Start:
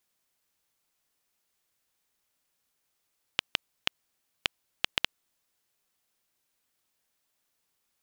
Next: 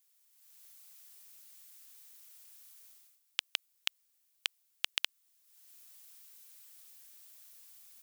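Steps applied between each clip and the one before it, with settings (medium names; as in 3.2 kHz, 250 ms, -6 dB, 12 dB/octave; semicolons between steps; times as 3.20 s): tilt EQ +4 dB/octave; level rider gain up to 15.5 dB; trim -8 dB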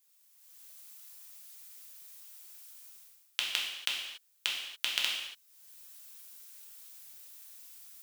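gated-style reverb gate 310 ms falling, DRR -3 dB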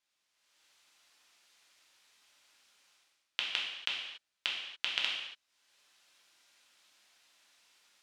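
low-pass 3.8 kHz 12 dB/octave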